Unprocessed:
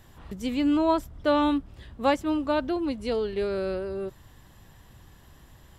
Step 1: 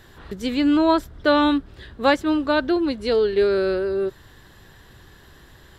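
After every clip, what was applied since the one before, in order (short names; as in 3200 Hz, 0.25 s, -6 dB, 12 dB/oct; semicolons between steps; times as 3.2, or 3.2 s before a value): fifteen-band EQ 400 Hz +8 dB, 1600 Hz +9 dB, 4000 Hz +8 dB; gain +2 dB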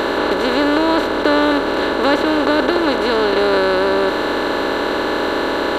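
per-bin compression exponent 0.2; gain -2.5 dB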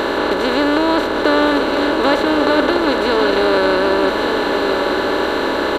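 echo 1.161 s -7 dB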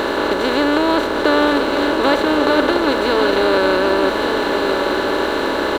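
crossover distortion -36.5 dBFS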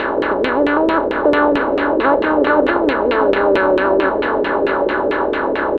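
LFO low-pass saw down 4.5 Hz 390–2800 Hz; gain -1.5 dB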